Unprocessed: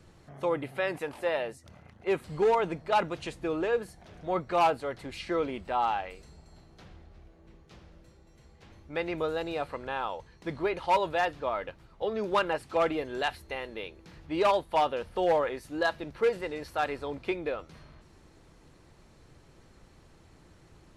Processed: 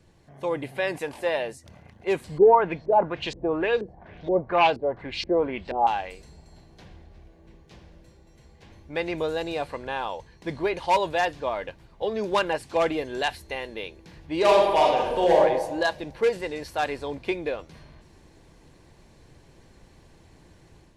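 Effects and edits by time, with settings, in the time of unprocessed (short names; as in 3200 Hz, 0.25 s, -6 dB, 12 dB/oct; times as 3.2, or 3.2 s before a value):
2.38–5.87 LFO low-pass saw up 2.1 Hz 350–5600 Hz
14.38–15.39 reverb throw, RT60 1.2 s, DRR -2 dB
whole clip: AGC gain up to 6 dB; notch 1300 Hz, Q 5.9; dynamic EQ 6800 Hz, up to +5 dB, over -49 dBFS, Q 0.79; gain -2.5 dB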